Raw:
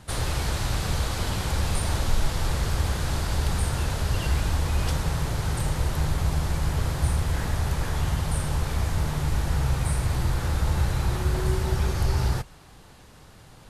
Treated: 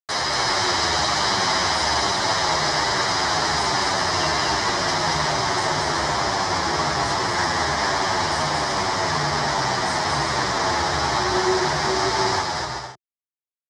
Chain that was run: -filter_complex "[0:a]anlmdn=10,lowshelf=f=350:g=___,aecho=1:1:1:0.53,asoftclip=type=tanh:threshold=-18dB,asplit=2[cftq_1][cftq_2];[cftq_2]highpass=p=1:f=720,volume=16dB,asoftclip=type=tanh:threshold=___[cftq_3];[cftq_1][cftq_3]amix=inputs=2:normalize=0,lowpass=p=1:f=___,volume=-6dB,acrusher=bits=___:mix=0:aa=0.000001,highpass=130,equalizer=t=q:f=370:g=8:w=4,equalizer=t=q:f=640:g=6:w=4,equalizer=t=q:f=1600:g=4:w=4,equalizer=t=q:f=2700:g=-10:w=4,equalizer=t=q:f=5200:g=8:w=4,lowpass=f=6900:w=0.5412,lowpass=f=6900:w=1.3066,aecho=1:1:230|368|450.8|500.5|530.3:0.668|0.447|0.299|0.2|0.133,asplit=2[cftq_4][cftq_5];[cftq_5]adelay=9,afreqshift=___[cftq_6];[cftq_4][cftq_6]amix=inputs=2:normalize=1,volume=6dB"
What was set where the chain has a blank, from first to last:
-7, -18dB, 4600, 4, -1.2